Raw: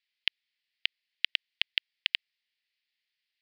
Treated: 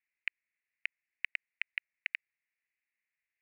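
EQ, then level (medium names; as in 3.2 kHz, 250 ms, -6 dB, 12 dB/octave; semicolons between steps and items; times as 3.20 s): four-pole ladder low-pass 2.8 kHz, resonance 50%; static phaser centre 1.4 kHz, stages 4; +5.5 dB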